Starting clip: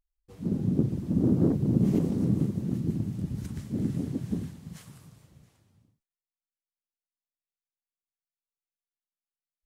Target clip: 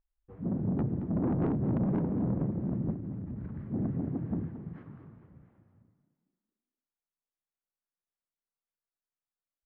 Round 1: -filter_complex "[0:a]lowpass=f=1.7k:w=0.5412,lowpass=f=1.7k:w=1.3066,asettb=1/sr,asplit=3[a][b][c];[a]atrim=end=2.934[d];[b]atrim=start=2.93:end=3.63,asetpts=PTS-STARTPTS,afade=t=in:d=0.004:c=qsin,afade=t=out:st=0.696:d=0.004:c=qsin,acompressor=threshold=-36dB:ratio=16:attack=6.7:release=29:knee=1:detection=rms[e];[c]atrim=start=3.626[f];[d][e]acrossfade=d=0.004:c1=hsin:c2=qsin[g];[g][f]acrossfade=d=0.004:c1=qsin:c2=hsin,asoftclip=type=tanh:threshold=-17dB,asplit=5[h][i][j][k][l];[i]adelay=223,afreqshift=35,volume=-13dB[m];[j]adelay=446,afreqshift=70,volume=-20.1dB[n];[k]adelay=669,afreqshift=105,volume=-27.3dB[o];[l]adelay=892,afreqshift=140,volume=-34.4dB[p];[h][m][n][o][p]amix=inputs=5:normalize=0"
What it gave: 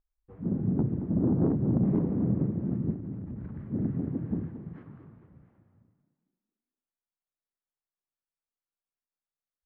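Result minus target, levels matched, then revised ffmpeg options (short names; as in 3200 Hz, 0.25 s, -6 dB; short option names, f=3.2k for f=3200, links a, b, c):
soft clip: distortion -8 dB
-filter_complex "[0:a]lowpass=f=1.7k:w=0.5412,lowpass=f=1.7k:w=1.3066,asettb=1/sr,asplit=3[a][b][c];[a]atrim=end=2.934[d];[b]atrim=start=2.93:end=3.63,asetpts=PTS-STARTPTS,afade=t=in:d=0.004:c=qsin,afade=t=out:st=0.696:d=0.004:c=qsin,acompressor=threshold=-36dB:ratio=16:attack=6.7:release=29:knee=1:detection=rms[e];[c]atrim=start=3.626[f];[d][e]acrossfade=d=0.004:c1=hsin:c2=qsin[g];[g][f]acrossfade=d=0.004:c1=qsin:c2=hsin,asoftclip=type=tanh:threshold=-25dB,asplit=5[h][i][j][k][l];[i]adelay=223,afreqshift=35,volume=-13dB[m];[j]adelay=446,afreqshift=70,volume=-20.1dB[n];[k]adelay=669,afreqshift=105,volume=-27.3dB[o];[l]adelay=892,afreqshift=140,volume=-34.4dB[p];[h][m][n][o][p]amix=inputs=5:normalize=0"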